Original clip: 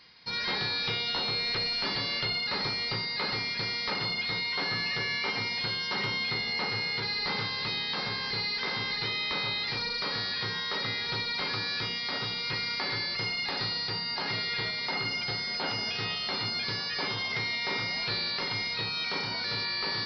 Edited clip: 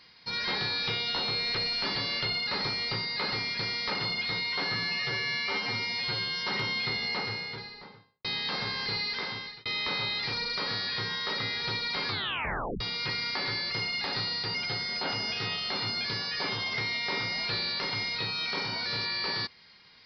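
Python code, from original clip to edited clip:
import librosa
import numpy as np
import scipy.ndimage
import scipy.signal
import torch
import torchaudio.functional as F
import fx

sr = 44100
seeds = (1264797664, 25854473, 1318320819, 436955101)

y = fx.studio_fade_out(x, sr, start_s=6.48, length_s=1.21)
y = fx.edit(y, sr, fx.stretch_span(start_s=4.75, length_s=1.11, factor=1.5),
    fx.fade_out_span(start_s=8.34, length_s=0.76, curve='qsin'),
    fx.tape_stop(start_s=11.53, length_s=0.72),
    fx.cut(start_s=13.99, length_s=1.14), tone=tone)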